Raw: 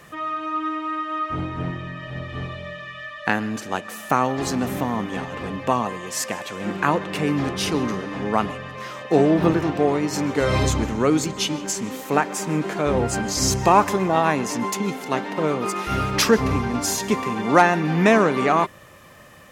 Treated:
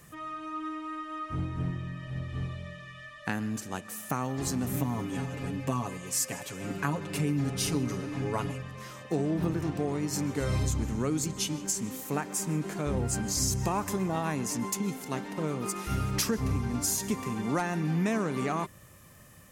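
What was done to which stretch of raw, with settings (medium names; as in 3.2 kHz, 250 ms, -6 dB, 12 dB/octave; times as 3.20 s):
4.73–8.62 s: comb 7.2 ms, depth 84%
whole clip: FFT filter 120 Hz 0 dB, 580 Hz -11 dB, 3.5 kHz -9 dB, 8.9 kHz +2 dB; compression, threshold -23 dBFS; trim -1.5 dB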